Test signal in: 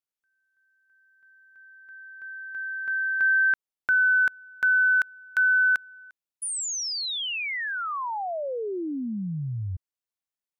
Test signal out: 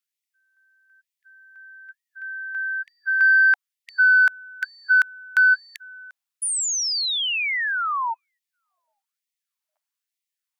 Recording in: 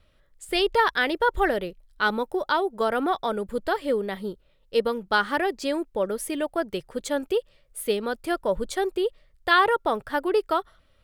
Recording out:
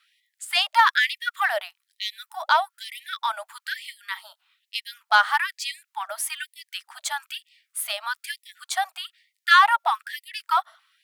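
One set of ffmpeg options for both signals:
-af "aeval=exprs='0.398*(cos(1*acos(clip(val(0)/0.398,-1,1)))-cos(1*PI/2))+0.0158*(cos(5*acos(clip(val(0)/0.398,-1,1)))-cos(5*PI/2))':c=same,afftfilt=real='re*gte(b*sr/1024,600*pow(1900/600,0.5+0.5*sin(2*PI*1.1*pts/sr)))':imag='im*gte(b*sr/1024,600*pow(1900/600,0.5+0.5*sin(2*PI*1.1*pts/sr)))':win_size=1024:overlap=0.75,volume=4.5dB"

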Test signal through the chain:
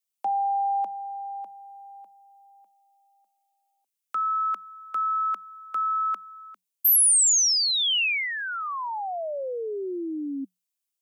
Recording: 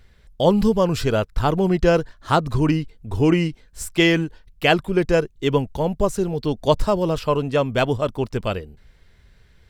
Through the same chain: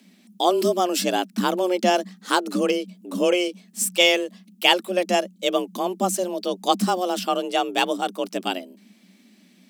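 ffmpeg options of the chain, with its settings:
-af "aexciter=amount=3.4:drive=1.4:freq=2.2k,afreqshift=180,volume=-3.5dB"

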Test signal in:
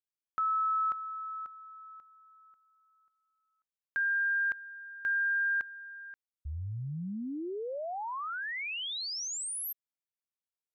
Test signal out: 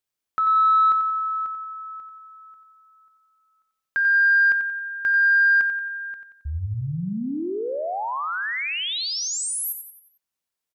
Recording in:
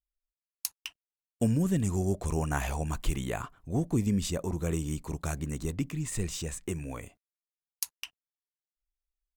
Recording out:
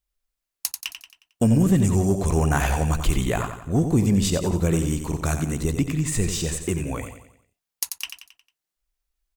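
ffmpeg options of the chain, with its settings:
-af "aecho=1:1:90|180|270|360|450:0.376|0.169|0.0761|0.0342|0.0154,aeval=exprs='0.299*sin(PI/2*1.78*val(0)/0.299)':c=same"

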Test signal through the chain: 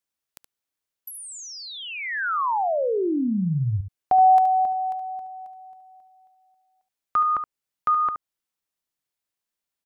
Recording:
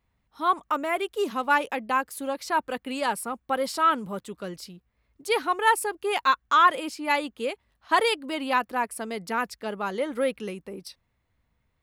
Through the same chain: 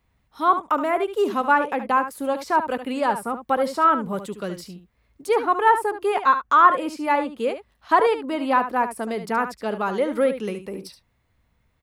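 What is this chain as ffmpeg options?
-filter_complex "[0:a]acrossover=split=800|1600[a][b][c];[c]acompressor=threshold=-45dB:ratio=6[d];[a][b][d]amix=inputs=3:normalize=0,aecho=1:1:72:0.299,volume=5.5dB"

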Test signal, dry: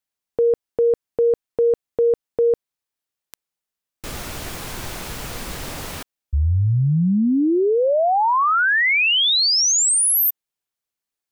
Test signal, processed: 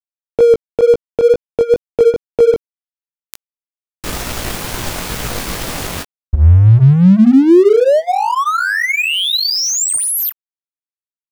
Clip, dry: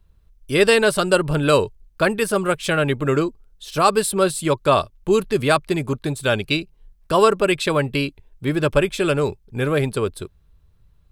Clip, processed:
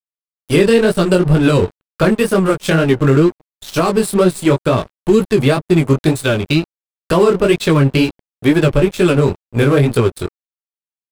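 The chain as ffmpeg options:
-filter_complex "[0:a]acrossover=split=390[a][b];[b]acompressor=threshold=-25dB:ratio=8:attack=6.4:release=625:knee=2.83:detection=peak[c];[a][c]amix=inputs=2:normalize=0,flanger=delay=16.5:depth=5.9:speed=2.1,asplit=2[d][e];[e]adelay=204.1,volume=-30dB,highshelf=f=4k:g=-4.59[f];[d][f]amix=inputs=2:normalize=0,aeval=exprs='sgn(val(0))*max(abs(val(0))-0.00891,0)':c=same,alimiter=level_in=16dB:limit=-1dB:release=50:level=0:latency=1,volume=-1dB"

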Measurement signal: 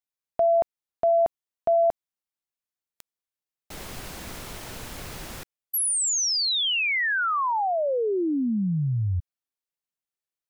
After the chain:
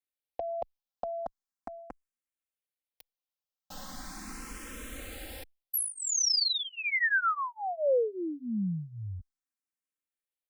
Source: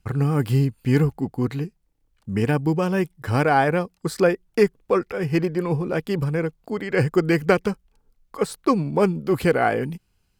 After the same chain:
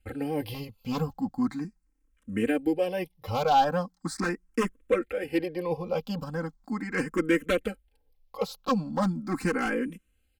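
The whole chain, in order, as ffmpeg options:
-filter_complex "[0:a]aeval=exprs='0.251*(abs(mod(val(0)/0.251+3,4)-2)-1)':c=same,aecho=1:1:3.8:0.91,asplit=2[a][b];[b]afreqshift=0.39[c];[a][c]amix=inputs=2:normalize=1,volume=-4.5dB"

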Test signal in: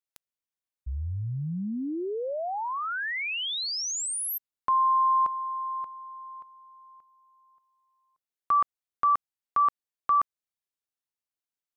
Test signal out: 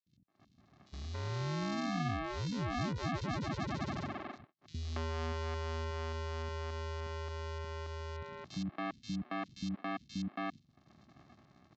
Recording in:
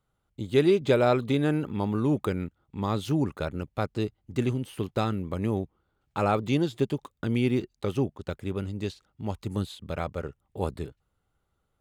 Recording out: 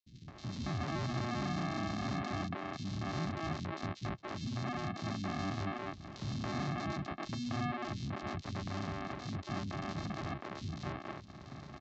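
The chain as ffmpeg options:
-filter_complex "[0:a]equalizer=f=490:t=o:w=0.71:g=-5.5,asplit=2[a][b];[b]acompressor=mode=upward:threshold=-32dB:ratio=4:attack=0.58:release=137:knee=2.83:detection=peak,volume=1dB[c];[a][c]amix=inputs=2:normalize=0,volume=23.5dB,asoftclip=hard,volume=-23.5dB,asplit=2[d][e];[e]highpass=f=720:p=1,volume=15dB,asoftclip=type=tanh:threshold=-23.5dB[f];[d][f]amix=inputs=2:normalize=0,lowpass=f=2.5k:p=1,volume=-6dB,aresample=16000,acrusher=samples=33:mix=1:aa=0.000001,aresample=44100,acompressor=threshold=-36dB:ratio=2.5:attack=2.9:release=96:detection=peak,highpass=110,equalizer=f=1.1k:t=q:w=4:g=5,equalizer=f=2k:t=q:w=4:g=3,equalizer=f=4k:t=q:w=4:g=4,lowpass=f=5.7k:w=0.5412,lowpass=f=5.7k:w=1.3066,acrossover=split=260|3100[g][h][i];[g]adelay=60[j];[h]adelay=280[k];[j][k][i]amix=inputs=3:normalize=0,agate=range=-33dB:threshold=-48dB:ratio=3:release=176:detection=peak,volume=1dB"

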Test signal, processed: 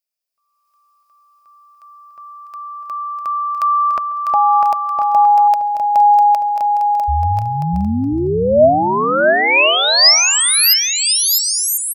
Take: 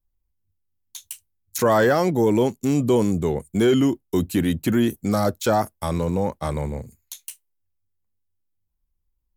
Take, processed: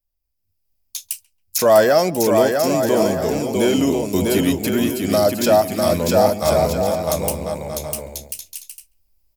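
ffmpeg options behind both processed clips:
-filter_complex "[0:a]highshelf=f=6.9k:g=11.5,asplit=2[a][b];[b]aecho=0:1:650|1040|1274|1414|1499:0.631|0.398|0.251|0.158|0.1[c];[a][c]amix=inputs=2:normalize=0,dynaudnorm=f=150:g=7:m=11dB,equalizer=f=125:t=o:w=0.33:g=-8,equalizer=f=630:t=o:w=0.33:g=12,equalizer=f=2.5k:t=o:w=0.33:g=7,equalizer=f=5k:t=o:w=0.33:g=11,asplit=2[d][e];[e]adelay=137,lowpass=f=1.6k:p=1,volume=-20dB,asplit=2[f][g];[g]adelay=137,lowpass=f=1.6k:p=1,volume=0.33,asplit=2[h][i];[i]adelay=137,lowpass=f=1.6k:p=1,volume=0.33[j];[f][h][j]amix=inputs=3:normalize=0[k];[d][k]amix=inputs=2:normalize=0,volume=-5dB"

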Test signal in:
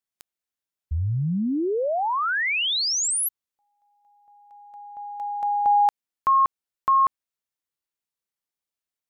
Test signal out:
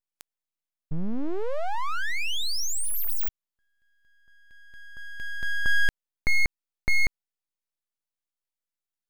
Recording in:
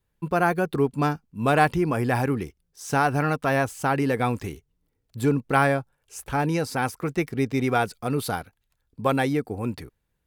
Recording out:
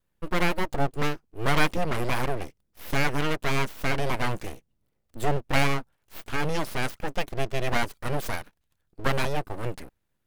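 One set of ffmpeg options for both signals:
-af "aeval=exprs='abs(val(0))':c=same"

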